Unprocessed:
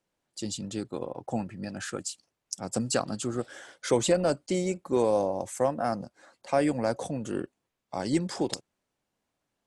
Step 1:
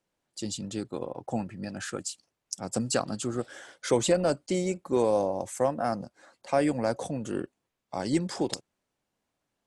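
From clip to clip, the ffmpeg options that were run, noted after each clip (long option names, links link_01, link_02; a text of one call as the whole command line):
ffmpeg -i in.wav -af anull out.wav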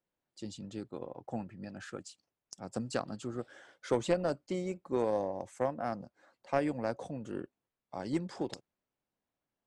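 ffmpeg -i in.wav -af "aeval=exprs='0.266*(cos(1*acos(clip(val(0)/0.266,-1,1)))-cos(1*PI/2))+0.0422*(cos(2*acos(clip(val(0)/0.266,-1,1)))-cos(2*PI/2))+0.0335*(cos(3*acos(clip(val(0)/0.266,-1,1)))-cos(3*PI/2))+0.0119*(cos(4*acos(clip(val(0)/0.266,-1,1)))-cos(4*PI/2))':channel_layout=same,aemphasis=mode=reproduction:type=50fm,volume=-4dB" out.wav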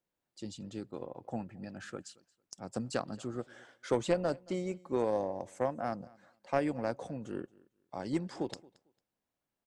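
ffmpeg -i in.wav -af "aecho=1:1:225|450:0.0631|0.0126" out.wav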